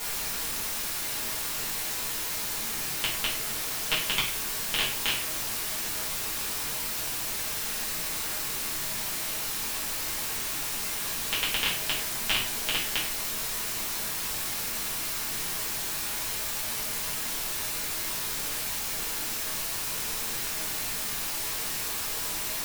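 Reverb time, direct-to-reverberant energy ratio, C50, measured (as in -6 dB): 0.45 s, -7.0 dB, 6.0 dB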